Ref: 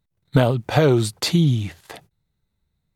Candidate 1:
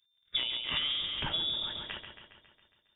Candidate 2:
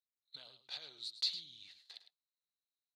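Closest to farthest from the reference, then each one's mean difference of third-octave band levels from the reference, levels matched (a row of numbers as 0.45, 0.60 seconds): 2, 1; 11.0, 14.5 decibels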